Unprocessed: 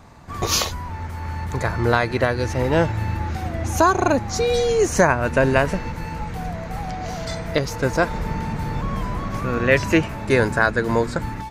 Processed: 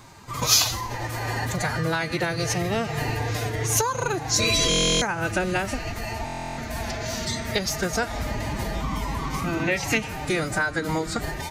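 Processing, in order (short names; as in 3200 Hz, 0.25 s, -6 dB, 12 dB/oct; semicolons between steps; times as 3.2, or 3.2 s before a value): reverb RT60 1.1 s, pre-delay 5 ms, DRR 17 dB; compressor 10:1, threshold -19 dBFS, peak gain reduction 9.5 dB; formant-preserving pitch shift +5.5 st; high shelf 2300 Hz +11.5 dB; stuck buffer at 4.69/6.25, samples 1024, times 13; gain -2.5 dB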